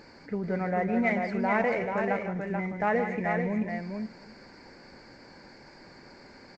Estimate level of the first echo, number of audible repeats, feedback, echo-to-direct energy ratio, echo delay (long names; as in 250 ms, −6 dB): −11.5 dB, 4, repeats not evenly spaced, −3.5 dB, 153 ms